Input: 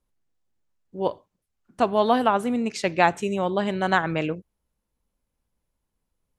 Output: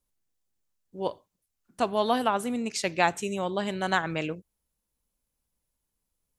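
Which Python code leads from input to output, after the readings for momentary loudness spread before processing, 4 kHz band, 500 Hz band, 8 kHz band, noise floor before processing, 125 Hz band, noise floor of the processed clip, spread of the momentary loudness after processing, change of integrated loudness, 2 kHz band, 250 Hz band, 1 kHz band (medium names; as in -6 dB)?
9 LU, -0.5 dB, -5.5 dB, +3.5 dB, -81 dBFS, -5.5 dB, -82 dBFS, 9 LU, -4.5 dB, -3.5 dB, -5.5 dB, -5.0 dB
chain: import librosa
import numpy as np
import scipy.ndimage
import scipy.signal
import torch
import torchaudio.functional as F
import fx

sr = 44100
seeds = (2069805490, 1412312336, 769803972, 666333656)

y = fx.high_shelf(x, sr, hz=4100.0, db=12.0)
y = y * 10.0 ** (-5.5 / 20.0)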